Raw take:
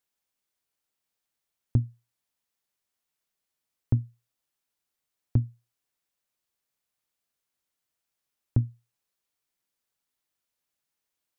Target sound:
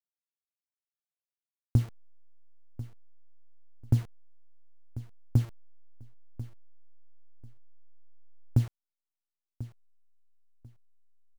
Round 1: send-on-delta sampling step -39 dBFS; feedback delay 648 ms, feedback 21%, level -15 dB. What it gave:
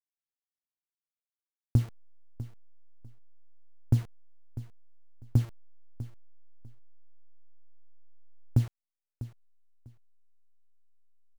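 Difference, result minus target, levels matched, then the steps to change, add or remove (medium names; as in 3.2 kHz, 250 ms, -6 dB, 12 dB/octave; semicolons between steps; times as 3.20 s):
echo 394 ms early
change: feedback delay 1042 ms, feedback 21%, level -15 dB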